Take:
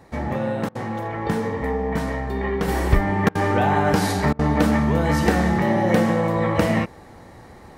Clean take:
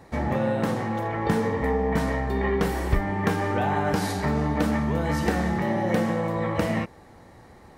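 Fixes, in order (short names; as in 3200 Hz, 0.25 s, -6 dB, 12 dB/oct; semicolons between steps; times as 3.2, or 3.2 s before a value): interpolate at 0.69/3.29/4.33, 60 ms; gain 0 dB, from 2.68 s -5.5 dB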